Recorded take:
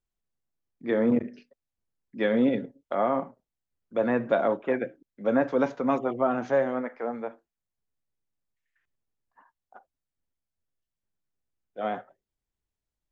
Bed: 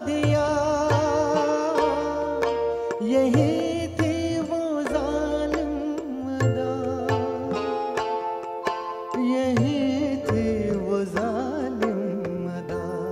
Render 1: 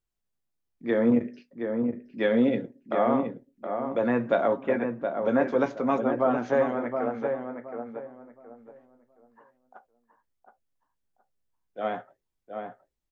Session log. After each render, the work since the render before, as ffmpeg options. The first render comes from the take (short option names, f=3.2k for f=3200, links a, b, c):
-filter_complex "[0:a]asplit=2[a][b];[b]adelay=17,volume=-10.5dB[c];[a][c]amix=inputs=2:normalize=0,asplit=2[d][e];[e]adelay=720,lowpass=f=1.6k:p=1,volume=-5.5dB,asplit=2[f][g];[g]adelay=720,lowpass=f=1.6k:p=1,volume=0.27,asplit=2[h][i];[i]adelay=720,lowpass=f=1.6k:p=1,volume=0.27,asplit=2[j][k];[k]adelay=720,lowpass=f=1.6k:p=1,volume=0.27[l];[d][f][h][j][l]amix=inputs=5:normalize=0"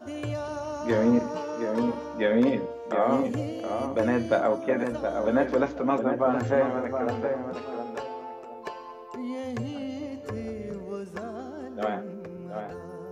-filter_complex "[1:a]volume=-11dB[a];[0:a][a]amix=inputs=2:normalize=0"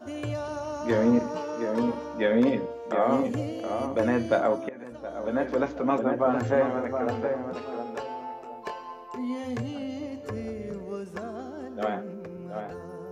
-filter_complex "[0:a]asettb=1/sr,asplit=3[a][b][c];[a]atrim=end=8.064[d];[b]atrim=start=8.06:end=9.62,asetpts=PTS-STARTPTS,afade=t=in:d=0.004:c=qsin,afade=t=out:st=1.556:d=0.004:c=qsin,asplit=2[e][f];[f]adelay=24,volume=-6.5dB[g];[e][g]amix=inputs=2:normalize=0,atrim=end_sample=68796[h];[c]atrim=start=9.616[i];[d][h]acrossfade=d=0.004:c1=hsin:c2=qsin[j];[j][i]acrossfade=d=0.004:c1=qsin:c2=hsin,asplit=2[k][l];[k]atrim=end=4.69,asetpts=PTS-STARTPTS,afade=t=out:st=4.686:d=0.004:c=hsin:silence=0.1[m];[l]atrim=start=4.69,asetpts=PTS-STARTPTS,afade=t=in:d=1.15:silence=0.1[n];[m][n]concat=n=2:v=0:a=1"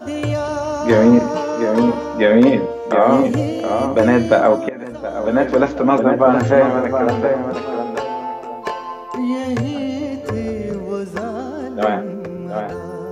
-af "volume=11.5dB,alimiter=limit=-2dB:level=0:latency=1"